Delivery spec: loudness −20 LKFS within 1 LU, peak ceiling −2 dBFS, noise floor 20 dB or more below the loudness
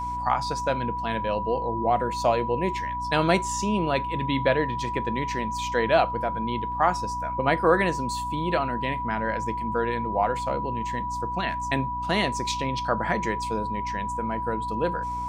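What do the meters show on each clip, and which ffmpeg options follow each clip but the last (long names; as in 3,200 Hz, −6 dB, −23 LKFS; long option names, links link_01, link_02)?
mains hum 60 Hz; hum harmonics up to 300 Hz; level of the hum −36 dBFS; interfering tone 980 Hz; level of the tone −28 dBFS; integrated loudness −26.0 LKFS; sample peak −6.0 dBFS; target loudness −20.0 LKFS
→ -af "bandreject=frequency=60:width_type=h:width=6,bandreject=frequency=120:width_type=h:width=6,bandreject=frequency=180:width_type=h:width=6,bandreject=frequency=240:width_type=h:width=6,bandreject=frequency=300:width_type=h:width=6"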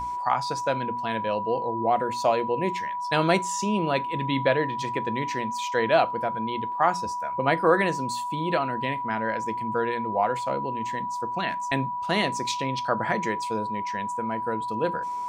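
mains hum none found; interfering tone 980 Hz; level of the tone −28 dBFS
→ -af "bandreject=frequency=980:width=30"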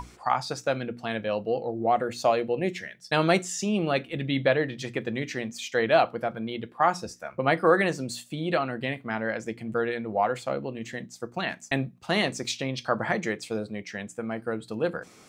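interfering tone none found; integrated loudness −28.0 LKFS; sample peak −7.0 dBFS; target loudness −20.0 LKFS
→ -af "volume=8dB,alimiter=limit=-2dB:level=0:latency=1"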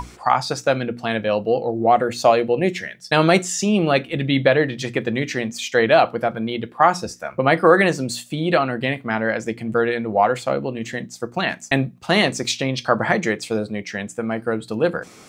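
integrated loudness −20.5 LKFS; sample peak −2.0 dBFS; background noise floor −45 dBFS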